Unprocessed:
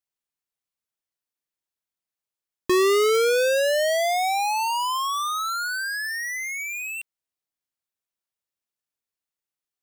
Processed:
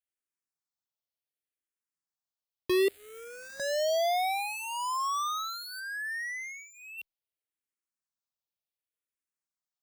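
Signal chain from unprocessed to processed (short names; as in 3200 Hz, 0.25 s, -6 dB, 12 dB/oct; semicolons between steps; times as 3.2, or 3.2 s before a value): 2.88–3.6 wrapped overs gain 30.5 dB; 5.79–6.97 LPF 4000 Hz -> 2200 Hz 6 dB/oct; endless phaser -0.67 Hz; gain -4 dB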